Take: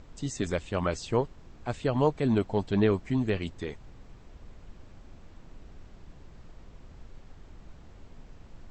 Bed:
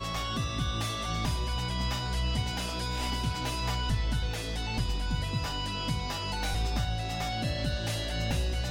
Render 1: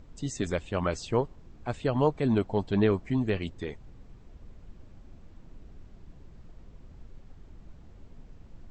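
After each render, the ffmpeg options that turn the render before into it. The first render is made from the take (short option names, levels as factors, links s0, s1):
-af "afftdn=nr=6:nf=-52"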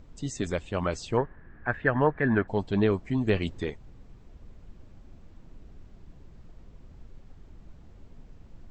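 -filter_complex "[0:a]asettb=1/sr,asplit=3[s0][s1][s2];[s0]atrim=end=1.174[s3];[s1]atrim=start=1.17:end=2.48,asetpts=PTS-STARTPTS,afade=t=in:d=0.004:c=qsin,afade=t=out:st=1.306:d=0.004:c=qsin,lowpass=f=1700:t=q:w=12[s4];[s2]atrim=start=2.476[s5];[s3][s4]acrossfade=d=0.004:c1=hsin:c2=qsin[s6];[s6][s5]acrossfade=d=0.004:c1=qsin:c2=hsin,asplit=3[s7][s8][s9];[s7]atrim=end=3.272[s10];[s8]atrim=start=3.268:end=3.702,asetpts=PTS-STARTPTS,volume=1.58[s11];[s9]atrim=start=3.698[s12];[s10][s11]acrossfade=d=0.004:c1=hsin:c2=hsin[s13];[s13][s12]acrossfade=d=0.004:c1=hsin:c2=hsin"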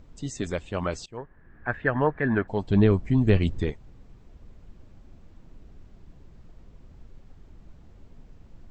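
-filter_complex "[0:a]asettb=1/sr,asplit=3[s0][s1][s2];[s0]atrim=end=2.684[s3];[s1]atrim=start=2.68:end=3.72,asetpts=PTS-STARTPTS,afade=t=in:d=0.004:c=qsin,afade=t=out:st=1.036:d=0.004:c=qsin,lowshelf=f=200:g=11.5[s4];[s2]atrim=start=3.716[s5];[s3][s4]acrossfade=d=0.004:c1=hsin:c2=qsin[s6];[s6][s5]acrossfade=d=0.004:c1=qsin:c2=hsin,asplit=2[s7][s8];[s7]atrim=end=1.06,asetpts=PTS-STARTPTS,afade=t=out:st=1.056:d=0.004:c=hsin:silence=0.0630957[s9];[s8]atrim=start=1.06,asetpts=PTS-STARTPTS,afade=t=in:d=0.63:silence=0.0630957[s10];[s9][s10]concat=n=2:v=0:a=1"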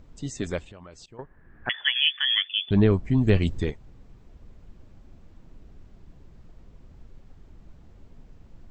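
-filter_complex "[0:a]asettb=1/sr,asplit=3[s0][s1][s2];[s0]atrim=end=0.644[s3];[s1]atrim=start=0.64:end=1.19,asetpts=PTS-STARTPTS,afade=t=in:d=0.004:c=qsin,afade=t=out:st=0.546:d=0.004:c=qsin,acompressor=threshold=0.00708:ratio=6:attack=3.2:release=140:knee=1:detection=peak[s4];[s2]atrim=start=1.186[s5];[s3][s4]acrossfade=d=0.004:c1=hsin:c2=qsin[s6];[s6][s5]acrossfade=d=0.004:c1=qsin:c2=hsin,asettb=1/sr,asplit=3[s7][s8][s9];[s7]atrim=end=1.694[s10];[s8]atrim=start=1.69:end=2.71,asetpts=PTS-STARTPTS,afade=t=in:d=0.004:c=qsin,afade=t=out:st=1.016:d=0.004:c=qsin,lowpass=f=3000:t=q:w=0.5098,lowpass=f=3000:t=q:w=0.6013,lowpass=f=3000:t=q:w=0.9,lowpass=f=3000:t=q:w=2.563,afreqshift=-3500[s11];[s9]atrim=start=2.706[s12];[s10][s11]acrossfade=d=0.004:c1=hsin:c2=qsin[s13];[s13][s12]acrossfade=d=0.004:c1=qsin:c2=hsin,asettb=1/sr,asplit=3[s14][s15][s16];[s14]atrim=end=3.234[s17];[s15]atrim=start=3.23:end=3.71,asetpts=PTS-STARTPTS,afade=t=in:d=0.004:c=qsin,afade=t=out:st=0.476:d=0.004:c=qsin,highshelf=f=5600:g=8[s18];[s16]atrim=start=3.706[s19];[s17][s18]acrossfade=d=0.004:c1=hsin:c2=qsin[s20];[s20][s19]acrossfade=d=0.004:c1=qsin:c2=hsin"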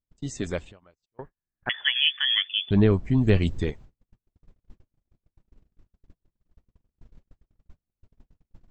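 -af "agate=range=0.00891:threshold=0.00794:ratio=16:detection=peak"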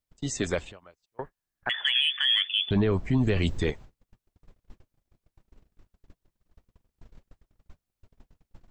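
-filter_complex "[0:a]acrossover=split=440[s0][s1];[s1]acontrast=52[s2];[s0][s2]amix=inputs=2:normalize=0,alimiter=limit=0.168:level=0:latency=1:release=23"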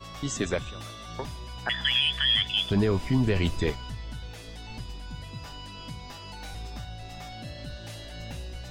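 -filter_complex "[1:a]volume=0.376[s0];[0:a][s0]amix=inputs=2:normalize=0"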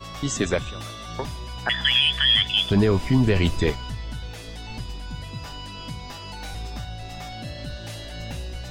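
-af "volume=1.78"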